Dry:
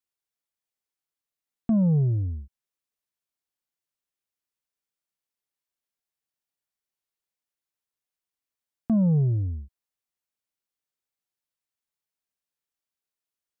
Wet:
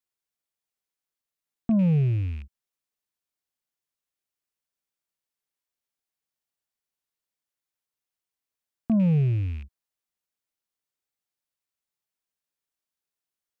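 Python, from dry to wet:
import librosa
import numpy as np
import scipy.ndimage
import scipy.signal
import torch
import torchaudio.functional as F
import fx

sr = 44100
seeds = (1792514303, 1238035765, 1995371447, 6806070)

y = fx.rattle_buzz(x, sr, strikes_db=-35.0, level_db=-38.0)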